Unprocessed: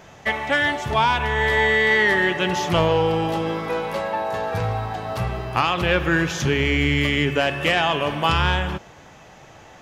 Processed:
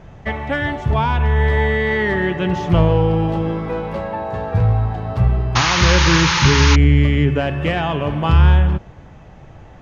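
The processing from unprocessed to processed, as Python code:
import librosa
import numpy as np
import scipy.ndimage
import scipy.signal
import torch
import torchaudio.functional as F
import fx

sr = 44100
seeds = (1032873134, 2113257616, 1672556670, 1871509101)

y = fx.spec_paint(x, sr, seeds[0], shape='noise', start_s=5.55, length_s=1.21, low_hz=820.0, high_hz=6800.0, level_db=-12.0)
y = fx.riaa(y, sr, side='playback')
y = F.gain(torch.from_numpy(y), -1.5).numpy()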